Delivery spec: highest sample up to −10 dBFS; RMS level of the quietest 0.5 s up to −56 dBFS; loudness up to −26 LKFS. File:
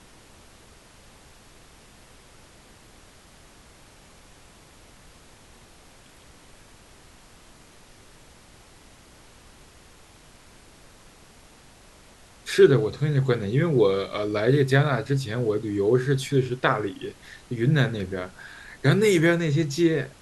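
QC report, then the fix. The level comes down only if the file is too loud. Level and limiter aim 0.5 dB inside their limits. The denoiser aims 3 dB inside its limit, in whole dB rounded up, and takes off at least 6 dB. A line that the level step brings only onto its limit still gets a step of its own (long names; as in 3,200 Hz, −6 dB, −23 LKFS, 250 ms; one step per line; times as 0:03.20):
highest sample −4.5 dBFS: out of spec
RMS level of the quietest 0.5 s −51 dBFS: out of spec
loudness −23.0 LKFS: out of spec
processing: broadband denoise 6 dB, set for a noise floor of −51 dBFS
level −3.5 dB
brickwall limiter −10.5 dBFS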